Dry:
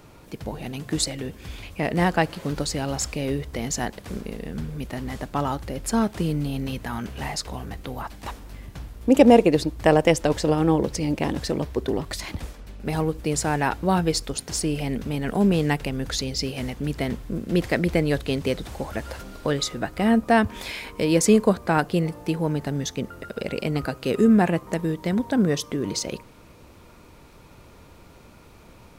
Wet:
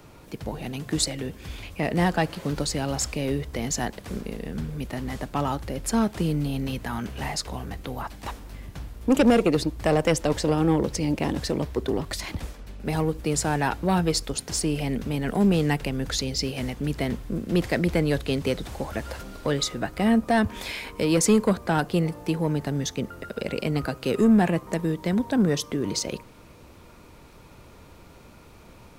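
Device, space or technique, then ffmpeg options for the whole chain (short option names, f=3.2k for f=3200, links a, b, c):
one-band saturation: -filter_complex "[0:a]acrossover=split=200|2700[a][b][c];[b]asoftclip=type=tanh:threshold=-15.5dB[d];[a][d][c]amix=inputs=3:normalize=0"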